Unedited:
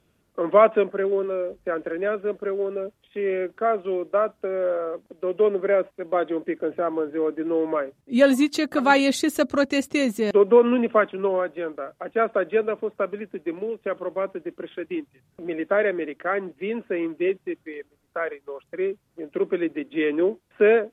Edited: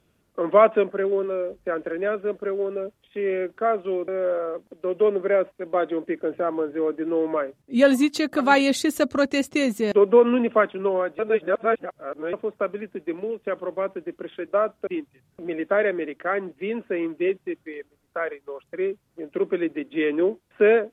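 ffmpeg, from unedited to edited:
-filter_complex "[0:a]asplit=6[s0][s1][s2][s3][s4][s5];[s0]atrim=end=4.082[s6];[s1]atrim=start=4.468:end=11.582[s7];[s2]atrim=start=11.578:end=12.722,asetpts=PTS-STARTPTS,areverse[s8];[s3]atrim=start=12.718:end=14.872[s9];[s4]atrim=start=4.078:end=4.472[s10];[s5]atrim=start=14.868[s11];[s6][s7]acrossfade=d=0.004:c1=hsin:c2=hsin[s12];[s12][s8]acrossfade=d=0.004:c1=hsin:c2=hsin[s13];[s13][s9]acrossfade=d=0.004:c1=hsin:c2=hsin[s14];[s14][s10]acrossfade=d=0.004:c1=hsin:c2=hsin[s15];[s15][s11]acrossfade=d=0.004:c1=hsin:c2=hsin"

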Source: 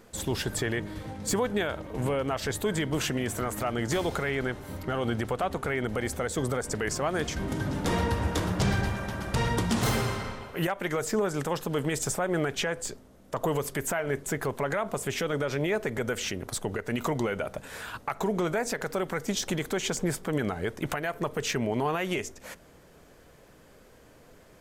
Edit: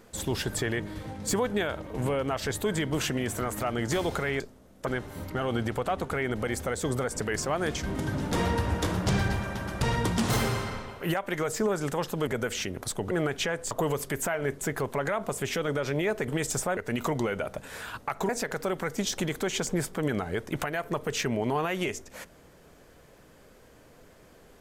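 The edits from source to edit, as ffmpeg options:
-filter_complex "[0:a]asplit=9[s0][s1][s2][s3][s4][s5][s6][s7][s8];[s0]atrim=end=4.402[s9];[s1]atrim=start=12.888:end=13.362[s10];[s2]atrim=start=4.398:end=11.802[s11];[s3]atrim=start=15.928:end=16.772[s12];[s4]atrim=start=12.288:end=12.892[s13];[s5]atrim=start=13.358:end=15.932[s14];[s6]atrim=start=11.798:end=12.292[s15];[s7]atrim=start=16.768:end=18.292[s16];[s8]atrim=start=18.588[s17];[s9][s10]acrossfade=d=0.004:c1=hsin:c2=hsin[s18];[s18][s11]acrossfade=d=0.004:c1=hsin:c2=hsin[s19];[s19][s12]acrossfade=d=0.004:c1=hsin:c2=hsin[s20];[s20][s13]acrossfade=d=0.004:c1=hsin:c2=hsin[s21];[s21][s14]acrossfade=d=0.004:c1=hsin:c2=hsin[s22];[s22][s15]acrossfade=d=0.004:c1=hsin:c2=hsin[s23];[s23][s16]acrossfade=d=0.004:c1=hsin:c2=hsin[s24];[s24][s17]acrossfade=d=0.004:c1=hsin:c2=hsin"

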